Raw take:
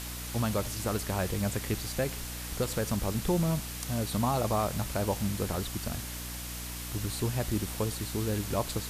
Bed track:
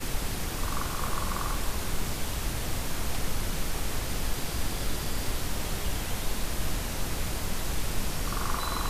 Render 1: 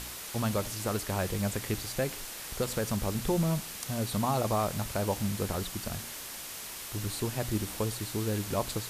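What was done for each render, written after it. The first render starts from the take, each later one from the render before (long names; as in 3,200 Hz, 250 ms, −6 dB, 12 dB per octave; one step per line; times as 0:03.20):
hum removal 60 Hz, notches 5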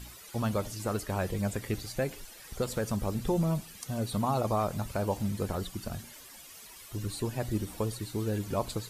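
broadband denoise 13 dB, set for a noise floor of −42 dBFS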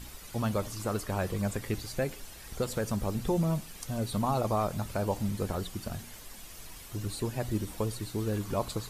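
mix in bed track −20.5 dB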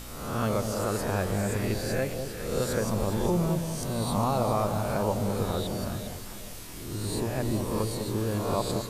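peak hold with a rise ahead of every peak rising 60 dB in 0.99 s
delay that swaps between a low-pass and a high-pass 202 ms, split 890 Hz, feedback 63%, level −6 dB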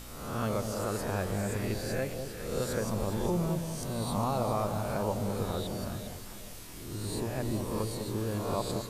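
level −4 dB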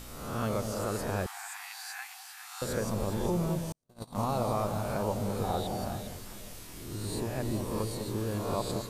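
0:01.26–0:02.62: linear-phase brick-wall high-pass 710 Hz
0:03.72–0:04.29: noise gate −31 dBFS, range −51 dB
0:05.43–0:06.02: parametric band 770 Hz +13.5 dB 0.31 octaves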